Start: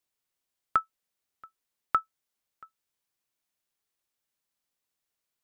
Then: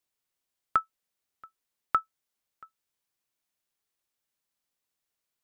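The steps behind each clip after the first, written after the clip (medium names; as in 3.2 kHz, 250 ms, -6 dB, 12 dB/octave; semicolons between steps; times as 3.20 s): no audible change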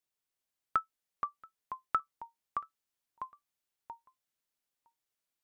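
ever faster or slower copies 382 ms, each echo -2 st, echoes 3, each echo -6 dB; trim -5 dB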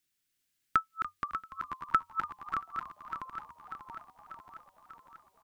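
backward echo that repeats 296 ms, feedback 78%, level -7.5 dB; high-order bell 720 Hz -11.5 dB; frequency-shifting echo 289 ms, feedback 62%, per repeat -94 Hz, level -14 dB; trim +8.5 dB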